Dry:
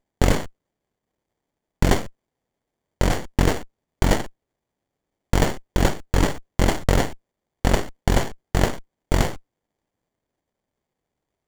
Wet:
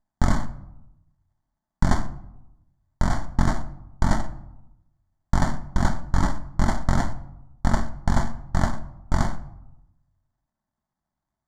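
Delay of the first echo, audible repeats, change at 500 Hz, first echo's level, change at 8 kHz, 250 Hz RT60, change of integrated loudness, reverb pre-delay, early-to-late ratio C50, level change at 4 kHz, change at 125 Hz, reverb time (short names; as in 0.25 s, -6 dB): none, none, -9.5 dB, none, -7.5 dB, 1.1 s, -3.0 dB, 5 ms, 14.5 dB, -10.0 dB, -1.5 dB, 0.90 s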